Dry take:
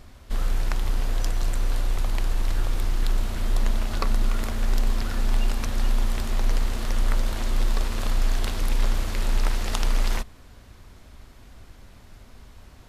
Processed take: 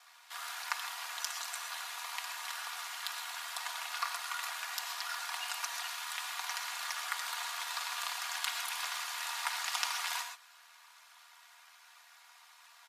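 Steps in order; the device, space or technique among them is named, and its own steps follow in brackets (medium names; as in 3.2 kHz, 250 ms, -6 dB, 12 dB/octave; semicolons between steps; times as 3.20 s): 5.89–6.60 s: high-pass 1.1 kHz -> 310 Hz; steep high-pass 870 Hz 36 dB/octave; ring-modulated robot voice (ring modulator 40 Hz; comb 4.2 ms, depth 69%); gated-style reverb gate 150 ms rising, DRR 6 dB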